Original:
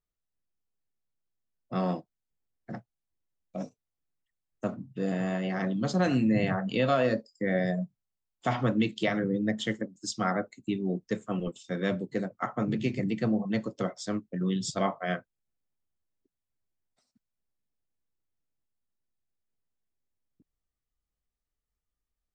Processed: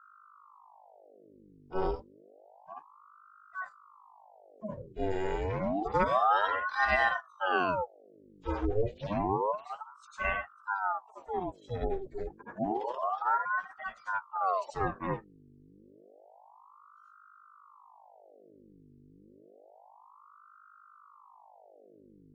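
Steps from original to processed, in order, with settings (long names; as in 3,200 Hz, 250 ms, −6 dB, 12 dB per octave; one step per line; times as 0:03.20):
harmonic-percussive split with one part muted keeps harmonic
mains hum 50 Hz, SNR 23 dB
ring modulator whose carrier an LFO sweeps 760 Hz, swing 75%, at 0.29 Hz
level +2 dB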